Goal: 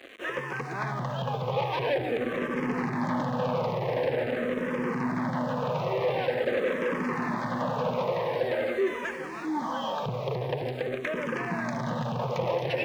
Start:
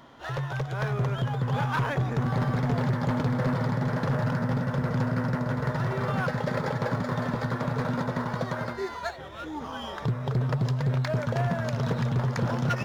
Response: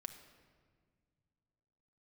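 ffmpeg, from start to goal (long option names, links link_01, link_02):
-filter_complex "[0:a]equalizer=frequency=315:width_type=o:width=0.33:gain=4,equalizer=frequency=500:width_type=o:width=0.33:gain=8,equalizer=frequency=2500:width_type=o:width=0.33:gain=6,equalizer=frequency=6300:width_type=o:width=0.33:gain=9,asplit=2[link_01][link_02];[1:a]atrim=start_sample=2205,lowshelf=frequency=66:gain=-8.5[link_03];[link_02][link_03]afir=irnorm=-1:irlink=0,volume=9dB[link_04];[link_01][link_04]amix=inputs=2:normalize=0,acrusher=bits=5:mix=0:aa=0.000001,asoftclip=type=tanh:threshold=-20dB,acrossover=split=180 3900:gain=0.141 1 0.112[link_05][link_06][link_07];[link_05][link_06][link_07]amix=inputs=3:normalize=0,bandreject=frequency=1400:width=6.2,asplit=2[link_08][link_09];[link_09]afreqshift=-0.46[link_10];[link_08][link_10]amix=inputs=2:normalize=1"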